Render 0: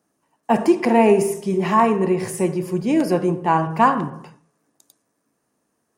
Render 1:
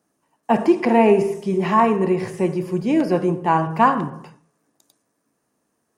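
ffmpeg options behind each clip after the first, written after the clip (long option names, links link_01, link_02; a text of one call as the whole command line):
ffmpeg -i in.wav -filter_complex "[0:a]acrossover=split=4900[link_01][link_02];[link_02]acompressor=threshold=-50dB:ratio=4:attack=1:release=60[link_03];[link_01][link_03]amix=inputs=2:normalize=0" out.wav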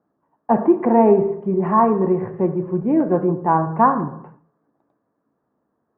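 ffmpeg -i in.wav -af "lowpass=frequency=1400:width=0.5412,lowpass=frequency=1400:width=1.3066,volume=1dB" out.wav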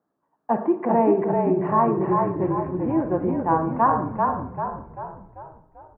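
ffmpeg -i in.wav -filter_complex "[0:a]lowshelf=frequency=390:gain=-5.5,asplit=2[link_01][link_02];[link_02]asplit=6[link_03][link_04][link_05][link_06][link_07][link_08];[link_03]adelay=391,afreqshift=-34,volume=-3dB[link_09];[link_04]adelay=782,afreqshift=-68,volume=-9.2dB[link_10];[link_05]adelay=1173,afreqshift=-102,volume=-15.4dB[link_11];[link_06]adelay=1564,afreqshift=-136,volume=-21.6dB[link_12];[link_07]adelay=1955,afreqshift=-170,volume=-27.8dB[link_13];[link_08]adelay=2346,afreqshift=-204,volume=-34dB[link_14];[link_09][link_10][link_11][link_12][link_13][link_14]amix=inputs=6:normalize=0[link_15];[link_01][link_15]amix=inputs=2:normalize=0,volume=-3.5dB" out.wav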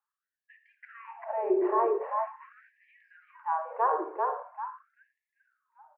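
ffmpeg -i in.wav -af "lowshelf=frequency=510:width_type=q:width=1.5:gain=6,afftfilt=real='re*gte(b*sr/1024,330*pow(1700/330,0.5+0.5*sin(2*PI*0.43*pts/sr)))':imag='im*gte(b*sr/1024,330*pow(1700/330,0.5+0.5*sin(2*PI*0.43*pts/sr)))':win_size=1024:overlap=0.75,volume=-6dB" out.wav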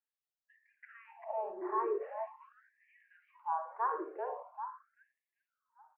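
ffmpeg -i in.wav -filter_complex "[0:a]asplit=2[link_01][link_02];[link_02]afreqshift=0.96[link_03];[link_01][link_03]amix=inputs=2:normalize=1,volume=-4.5dB" out.wav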